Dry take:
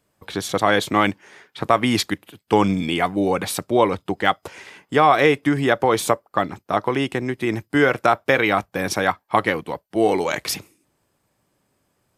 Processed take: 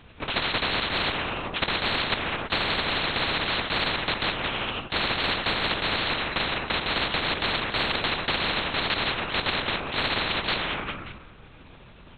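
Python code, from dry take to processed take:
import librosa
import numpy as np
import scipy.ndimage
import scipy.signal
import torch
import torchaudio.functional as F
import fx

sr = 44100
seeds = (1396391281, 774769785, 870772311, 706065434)

p1 = fx.bit_reversed(x, sr, seeds[0], block=64)
p2 = fx.low_shelf(p1, sr, hz=350.0, db=-5.0)
p3 = p2 + fx.echo_feedback(p2, sr, ms=194, feedback_pct=42, wet_db=-22, dry=0)
p4 = fx.rev_fdn(p3, sr, rt60_s=1.3, lf_ratio=1.0, hf_ratio=0.55, size_ms=14.0, drr_db=9.5)
p5 = fx.lpc_vocoder(p4, sr, seeds[1], excitation='whisper', order=8)
y = fx.spectral_comp(p5, sr, ratio=10.0)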